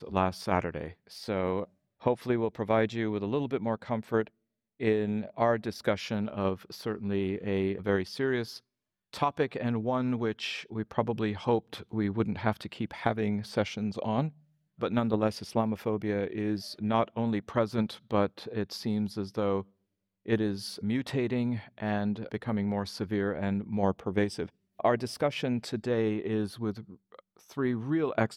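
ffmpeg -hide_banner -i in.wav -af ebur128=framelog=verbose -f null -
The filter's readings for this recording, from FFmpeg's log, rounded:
Integrated loudness:
  I:         -31.1 LUFS
  Threshold: -41.4 LUFS
Loudness range:
  LRA:         1.6 LU
  Threshold: -51.4 LUFS
  LRA low:   -32.2 LUFS
  LRA high:  -30.6 LUFS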